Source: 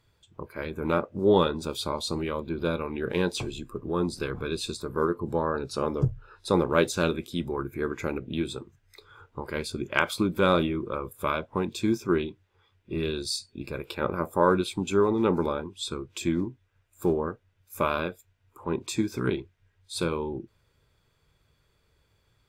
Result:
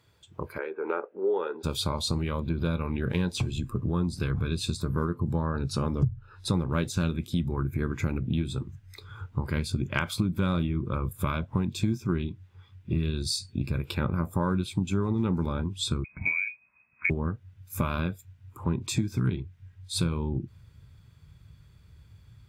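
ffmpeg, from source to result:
-filter_complex "[0:a]asplit=3[a][b][c];[a]afade=t=out:st=0.57:d=0.02[d];[b]highpass=f=400:w=0.5412,highpass=f=400:w=1.3066,equalizer=f=410:t=q:w=4:g=6,equalizer=f=620:t=q:w=4:g=-9,equalizer=f=1.1k:t=q:w=4:g=-8,equalizer=f=2k:t=q:w=4:g=-6,lowpass=f=2.1k:w=0.5412,lowpass=f=2.1k:w=1.3066,afade=t=in:st=0.57:d=0.02,afade=t=out:st=1.63:d=0.02[e];[c]afade=t=in:st=1.63:d=0.02[f];[d][e][f]amix=inputs=3:normalize=0,asettb=1/sr,asplit=3[g][h][i];[g]atrim=end=16.044[j];[h]atrim=start=16.04:end=17.1,asetpts=PTS-STARTPTS,afade=t=in:d=0.004:c=qsin,afade=t=out:st=1.056:d=0.004:c=qsin,lowpass=f=2.2k:t=q:w=0.5098,lowpass=f=2.2k:t=q:w=0.6013,lowpass=f=2.2k:t=q:w=0.9,lowpass=f=2.2k:t=q:w=2.563,afreqshift=-2600[k];[i]atrim=start=17.096[l];[j][k]acrossfade=d=0.004:c1=hsin:c2=qsin[m];[m][l]acrossfade=d=0.004:c1=qsin:c2=hsin,highpass=82,asubboost=boost=10:cutoff=140,acompressor=threshold=-29dB:ratio=4,volume=4dB"

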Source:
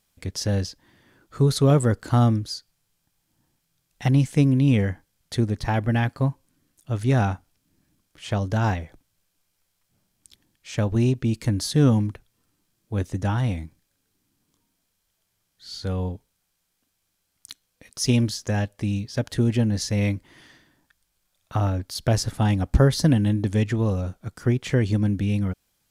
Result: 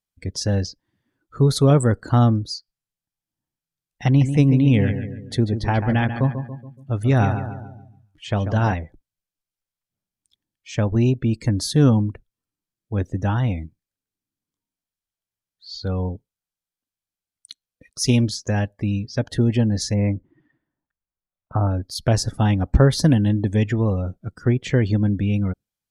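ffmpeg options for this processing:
-filter_complex "[0:a]asettb=1/sr,asplit=3[a][b][c];[a]atrim=end=4.074[d];[b]atrim=start=4.07:end=8.73,asetpts=PTS-STARTPTS,afade=t=in:d=0.004:c=qsin,afade=t=out:st=4.656:d=0.004:c=qsin,aecho=1:1:141|282|423|564|705|846:0.355|0.181|0.0923|0.0471|0.024|0.0122,atrim=end_sample=205506[e];[c]atrim=start=8.726[f];[d][e]acrossfade=d=0.004:c1=hsin:c2=qsin[g];[g][f]acrossfade=d=0.004:c1=qsin:c2=hsin,asplit=3[h][i][j];[h]afade=t=out:st=19.93:d=0.02[k];[i]lowpass=1.5k,afade=t=in:st=19.93:d=0.02,afade=t=out:st=21.69:d=0.02[l];[j]afade=t=in:st=21.69:d=0.02[m];[k][l][m]amix=inputs=3:normalize=0,afftdn=nr=21:nf=-43,volume=2.5dB"

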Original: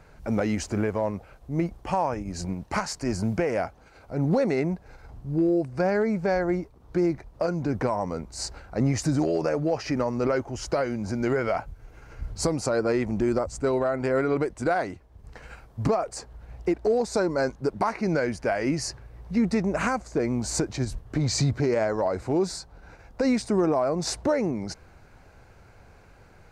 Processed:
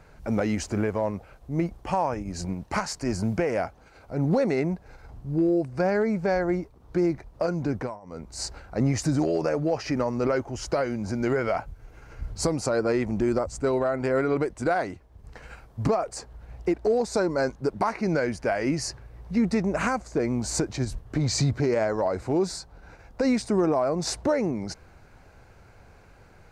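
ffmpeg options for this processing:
-filter_complex "[0:a]asplit=3[a][b][c];[a]atrim=end=8,asetpts=PTS-STARTPTS,afade=t=out:st=7.69:d=0.31:silence=0.0794328[d];[b]atrim=start=8:end=8.02,asetpts=PTS-STARTPTS,volume=-22dB[e];[c]atrim=start=8.02,asetpts=PTS-STARTPTS,afade=t=in:d=0.31:silence=0.0794328[f];[d][e][f]concat=n=3:v=0:a=1"

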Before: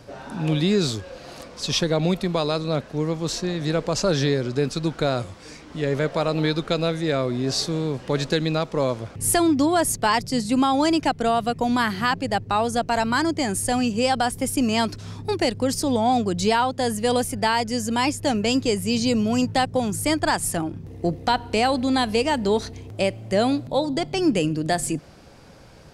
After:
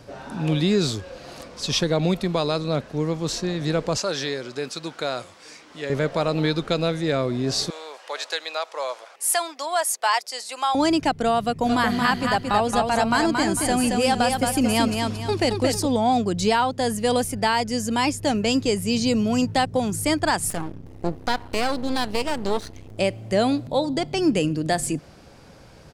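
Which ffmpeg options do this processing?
-filter_complex "[0:a]asettb=1/sr,asplit=3[a][b][c];[a]atrim=end=3.974[d];[b]atrim=start=3.97:end=5.9,asetpts=PTS-STARTPTS,afade=t=in:d=0.004:c=qsin,afade=t=out:st=1.926:d=0.004:c=qsin,highpass=f=740:p=1[e];[c]atrim=start=5.896[f];[d][e]acrossfade=d=0.004:c1=hsin:c2=qsin[g];[g][f]acrossfade=d=0.004:c1=qsin:c2=hsin,asettb=1/sr,asplit=3[h][i][j];[h]atrim=end=7.704[k];[i]atrim=start=7.7:end=10.75,asetpts=PTS-STARTPTS,afade=t=in:d=0.004:c=qsin,afade=t=out:st=3.046:d=0.004:c=qsin,highpass=f=640:w=0.5412,highpass=f=640:w=1.3066[l];[j]atrim=start=10.746[m];[k][l]acrossfade=d=0.004:c1=hsin:c2=qsin[n];[n][m]acrossfade=d=0.004:c1=qsin:c2=hsin,asplit=3[o][p][q];[o]afade=t=out:st=11.64:d=0.02[r];[p]aecho=1:1:225|450|675|900:0.631|0.221|0.0773|0.0271,afade=t=in:st=11.64:d=0.02,afade=t=out:st=15.85:d=0.02[s];[q]afade=t=in:st=15.85:d=0.02[t];[r][s][t]amix=inputs=3:normalize=0,asettb=1/sr,asplit=3[u][v][w];[u]atrim=end=20.504[x];[v]atrim=start=20.5:end=22.98,asetpts=PTS-STARTPTS,afade=t=in:d=0.004:c=qsin,afade=t=out:st=2.476:d=0.004:c=qsin,aeval=exprs='max(val(0),0)':c=same[y];[w]atrim=start=22.976[z];[x][y]acrossfade=d=0.004:c1=hsin:c2=qsin[aa];[aa][z]acrossfade=d=0.004:c1=qsin:c2=hsin"

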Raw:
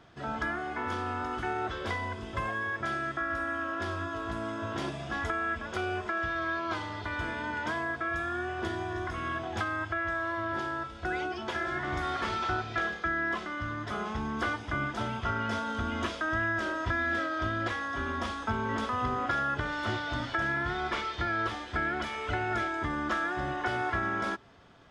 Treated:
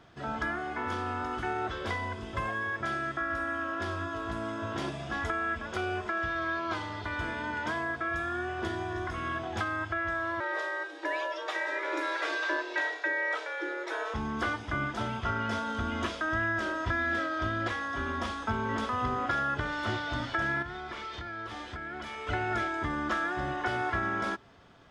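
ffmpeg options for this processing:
-filter_complex "[0:a]asettb=1/sr,asplit=3[a][b][c];[a]atrim=end=10.404[d];[b]atrim=start=10.4:end=14.14,asetpts=PTS-STARTPTS,afade=t=in:d=0.004:c=qsin,afade=t=out:st=3.736:d=0.004:c=qsin,afreqshift=250[e];[c]atrim=start=14.136[f];[d][e]acrossfade=d=0.004:c1=hsin:c2=qsin[g];[g][f]acrossfade=d=0.004:c1=qsin:c2=hsin,asettb=1/sr,asplit=3[h][i][j];[h]atrim=end=20.624[k];[i]atrim=start=20.62:end=22.27,asetpts=PTS-STARTPTS,afade=t=in:d=0.004:c=qsin,afade=t=out:st=1.646:d=0.004:c=qsin,acompressor=threshold=-35dB:ratio=12:attack=3.2:release=140:knee=1:detection=peak[l];[j]atrim=start=22.266[m];[k][l]acrossfade=d=0.004:c1=hsin:c2=qsin[n];[n][m]acrossfade=d=0.004:c1=qsin:c2=hsin"

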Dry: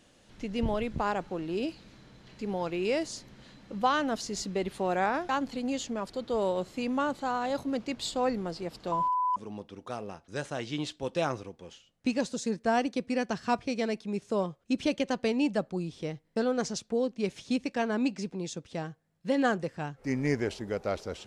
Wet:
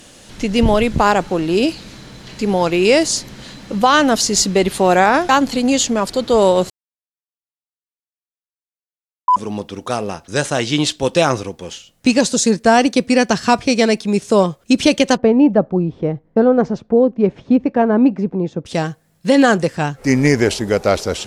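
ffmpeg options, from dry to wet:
-filter_complex "[0:a]asplit=3[a][b][c];[a]afade=t=out:st=15.16:d=0.02[d];[b]lowpass=1k,afade=t=in:st=15.16:d=0.02,afade=t=out:st=18.65:d=0.02[e];[c]afade=t=in:st=18.65:d=0.02[f];[d][e][f]amix=inputs=3:normalize=0,asplit=3[g][h][i];[g]atrim=end=6.7,asetpts=PTS-STARTPTS,afade=t=out:st=6.696:d=0.004:c=hsin[j];[h]atrim=start=6.7:end=9.28,asetpts=PTS-STARTPTS,volume=0[k];[i]atrim=start=9.28,asetpts=PTS-STARTPTS,afade=t=in:d=0.004:c=hsin[l];[j][k][l]concat=n=3:v=0:a=1,aemphasis=mode=production:type=cd,alimiter=level_in=17.5dB:limit=-1dB:release=50:level=0:latency=1,volume=-1dB"

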